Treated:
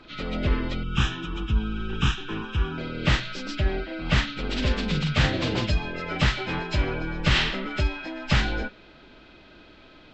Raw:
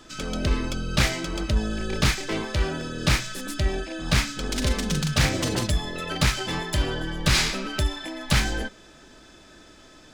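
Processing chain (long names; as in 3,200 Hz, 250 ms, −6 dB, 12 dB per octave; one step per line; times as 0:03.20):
hearing-aid frequency compression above 1,300 Hz 1.5 to 1
0:00.83–0:02.78: phaser with its sweep stopped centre 3,000 Hz, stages 8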